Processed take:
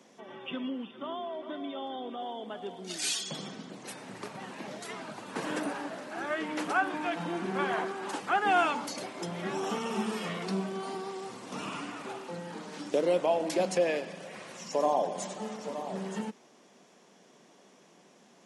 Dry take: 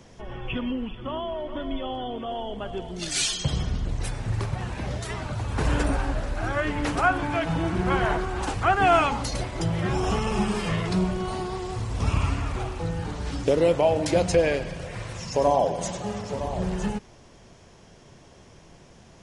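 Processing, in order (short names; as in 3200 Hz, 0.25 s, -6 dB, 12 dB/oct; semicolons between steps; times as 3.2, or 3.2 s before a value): steep high-pass 180 Hz 36 dB/oct; speed mistake 24 fps film run at 25 fps; gain -6 dB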